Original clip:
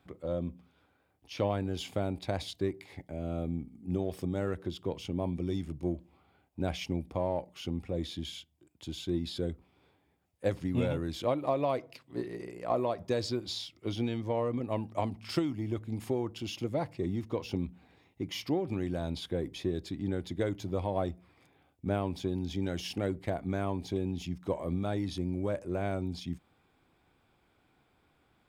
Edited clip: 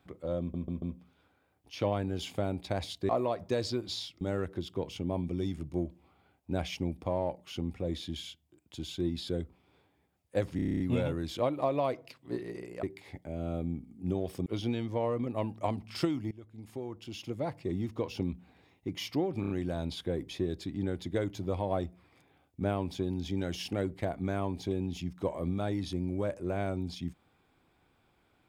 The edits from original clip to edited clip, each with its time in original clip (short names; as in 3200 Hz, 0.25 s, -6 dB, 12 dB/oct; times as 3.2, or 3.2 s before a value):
0.4 stutter 0.14 s, 4 plays
2.67–4.3 swap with 12.68–13.8
10.65 stutter 0.03 s, 9 plays
15.65–17.15 fade in, from -19 dB
18.75 stutter 0.03 s, 4 plays